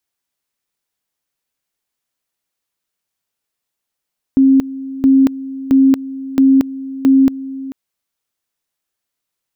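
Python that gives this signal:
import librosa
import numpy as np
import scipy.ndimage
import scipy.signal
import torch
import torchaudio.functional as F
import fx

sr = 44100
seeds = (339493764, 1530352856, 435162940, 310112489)

y = fx.two_level_tone(sr, hz=268.0, level_db=-6.0, drop_db=17.0, high_s=0.23, low_s=0.44, rounds=5)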